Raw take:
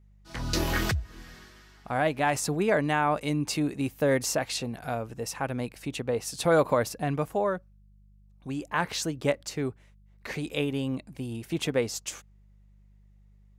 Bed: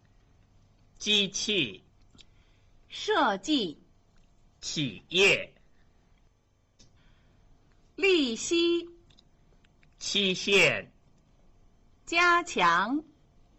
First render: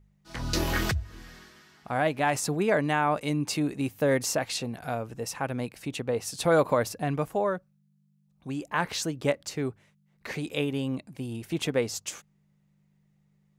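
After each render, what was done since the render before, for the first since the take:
hum removal 50 Hz, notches 2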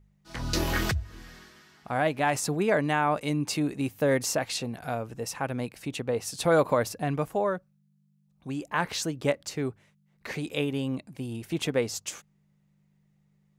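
no processing that can be heard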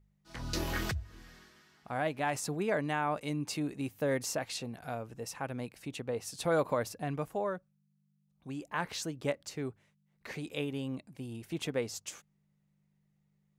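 level −7 dB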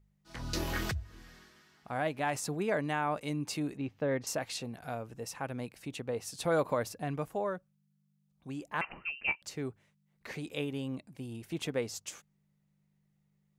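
0:03.77–0:04.27: high-frequency loss of the air 210 metres
0:08.81–0:09.42: voice inversion scrambler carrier 2,900 Hz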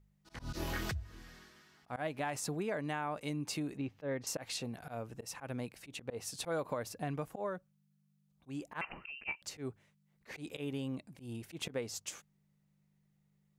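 volume swells 106 ms
downward compressor 4 to 1, threshold −34 dBFS, peak gain reduction 8.5 dB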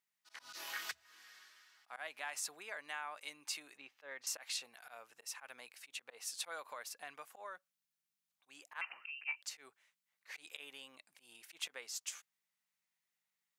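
high-pass filter 1,300 Hz 12 dB per octave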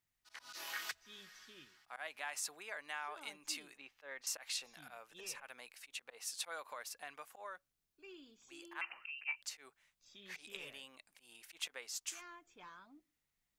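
mix in bed −32 dB

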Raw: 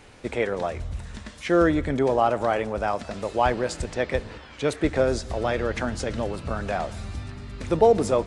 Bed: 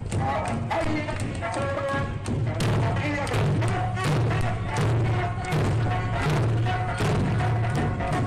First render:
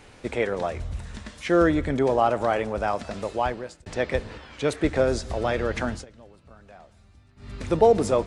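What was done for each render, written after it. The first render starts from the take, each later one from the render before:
0:03.20–0:03.86: fade out
0:05.91–0:07.51: duck −21 dB, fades 0.15 s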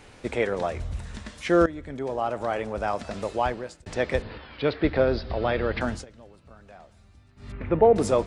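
0:01.66–0:03.21: fade in, from −16.5 dB
0:04.22–0:05.81: Butterworth low-pass 4,900 Hz 72 dB per octave
0:07.52–0:07.96: Chebyshev low-pass filter 2,300 Hz, order 3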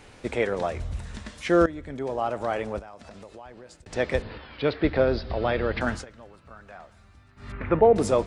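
0:02.79–0:03.93: downward compressor 5 to 1, threshold −42 dBFS
0:05.86–0:07.80: parametric band 1,400 Hz +8 dB 1.5 octaves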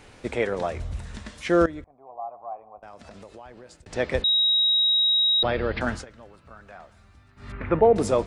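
0:01.84–0:02.83: formant resonators in series a
0:04.24–0:05.43: beep over 3,810 Hz −17.5 dBFS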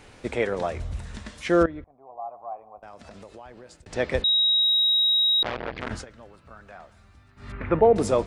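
0:01.63–0:02.26: high-frequency loss of the air 270 metres
0:04.62–0:05.91: saturating transformer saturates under 1,700 Hz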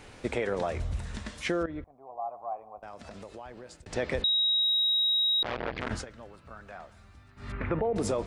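brickwall limiter −17 dBFS, peak gain reduction 11 dB
downward compressor 4 to 1, threshold −25 dBFS, peak gain reduction 5 dB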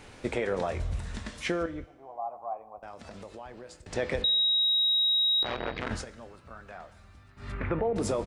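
double-tracking delay 22 ms −13.5 dB
four-comb reverb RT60 1.2 s, combs from 30 ms, DRR 18 dB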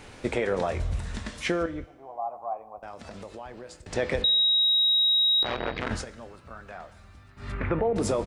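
level +3 dB

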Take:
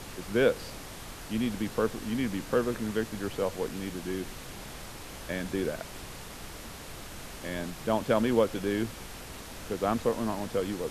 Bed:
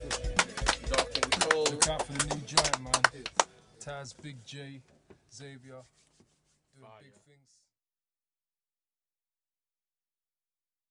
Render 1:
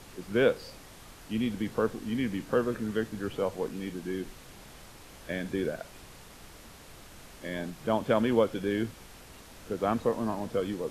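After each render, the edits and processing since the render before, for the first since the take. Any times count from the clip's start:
noise reduction from a noise print 7 dB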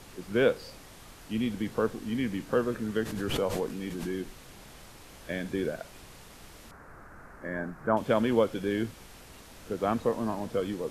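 0:02.96–0:04.22: background raised ahead of every attack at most 34 dB per second
0:06.71–0:07.97: high shelf with overshoot 2,200 Hz −13.5 dB, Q 3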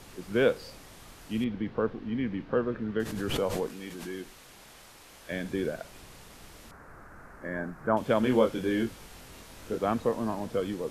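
0:01.44–0:03.00: high-frequency loss of the air 300 metres
0:03.68–0:05.32: low-shelf EQ 340 Hz −9 dB
0:08.21–0:09.78: double-tracking delay 23 ms −4 dB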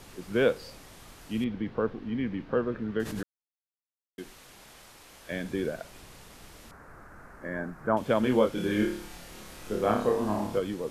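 0:03.23–0:04.18: silence
0:08.54–0:10.59: flutter between parallel walls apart 4.9 metres, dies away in 0.53 s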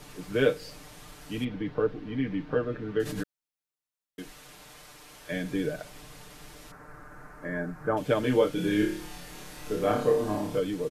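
comb filter 6.7 ms, depth 75%
dynamic equaliser 990 Hz, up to −6 dB, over −42 dBFS, Q 1.6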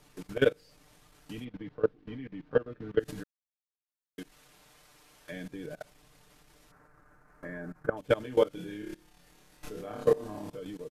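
transient designer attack +5 dB, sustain −8 dB
output level in coarse steps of 20 dB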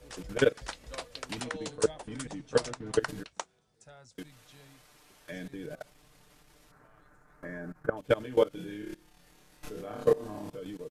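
mix in bed −12.5 dB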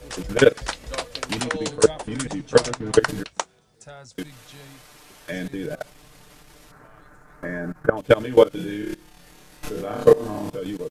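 level +11 dB
brickwall limiter −1 dBFS, peak gain reduction 2 dB

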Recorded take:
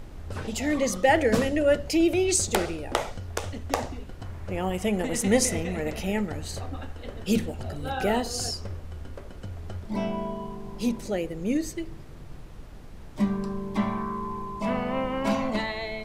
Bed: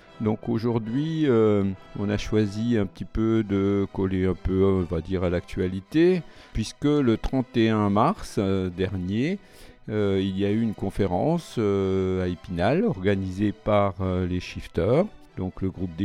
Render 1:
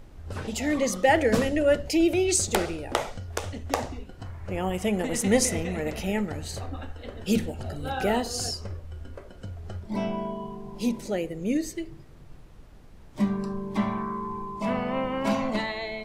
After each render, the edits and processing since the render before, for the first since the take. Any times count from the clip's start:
noise reduction from a noise print 6 dB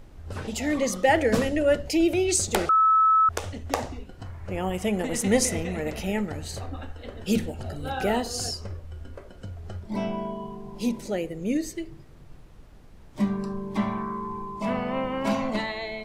0:02.69–0:03.29: beep over 1,300 Hz −15.5 dBFS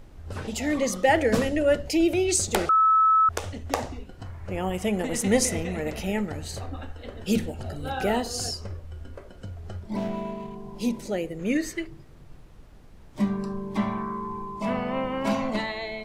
0:09.97–0:10.55: running median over 25 samples
0:11.39–0:11.87: parametric band 1,600 Hz +12 dB 1.5 octaves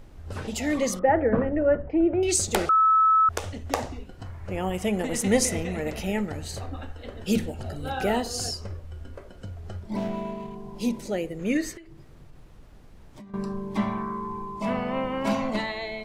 0:00.99–0:02.23: low-pass filter 1,600 Hz 24 dB per octave
0:11.77–0:13.34: downward compressor 20 to 1, threshold −41 dBFS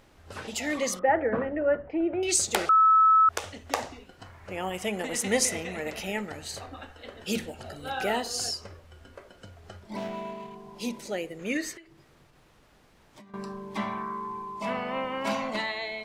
low-pass filter 2,300 Hz 6 dB per octave
spectral tilt +3.5 dB per octave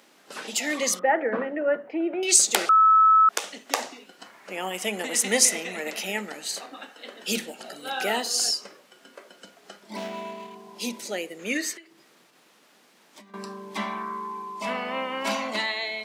Butterworth high-pass 190 Hz 36 dB per octave
high-shelf EQ 2,000 Hz +8 dB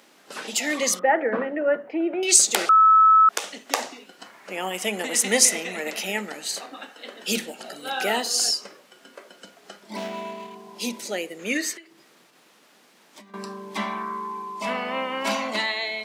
level +2 dB
brickwall limiter −2 dBFS, peak gain reduction 3 dB

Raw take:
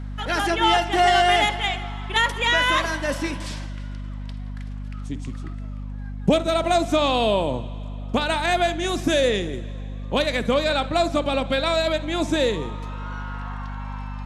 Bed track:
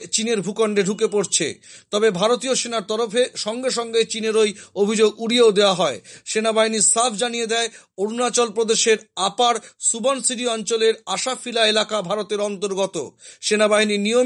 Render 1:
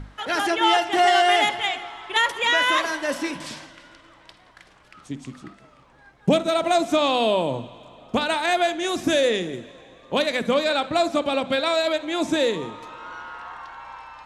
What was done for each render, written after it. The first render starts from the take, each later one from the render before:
mains-hum notches 50/100/150/200/250 Hz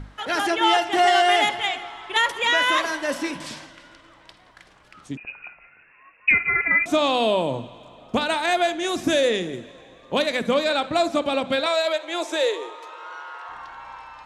0:05.17–0:06.86: voice inversion scrambler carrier 2,700 Hz
0:11.66–0:13.49: Butterworth high-pass 360 Hz 48 dB per octave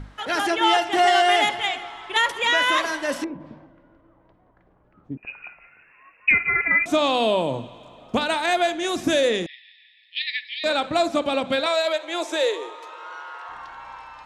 0:03.24–0:05.23: Bessel low-pass filter 520 Hz
0:09.46–0:10.64: linear-phase brick-wall band-pass 1,700–5,400 Hz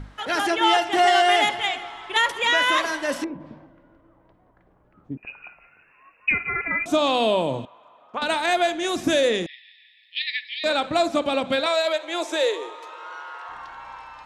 0:05.28–0:07.07: parametric band 2,000 Hz −7 dB 0.5 octaves
0:07.65–0:08.22: resonant band-pass 1,200 Hz, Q 1.7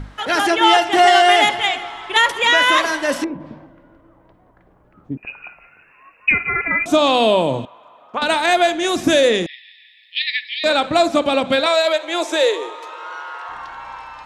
level +6 dB
brickwall limiter −2 dBFS, peak gain reduction 1.5 dB

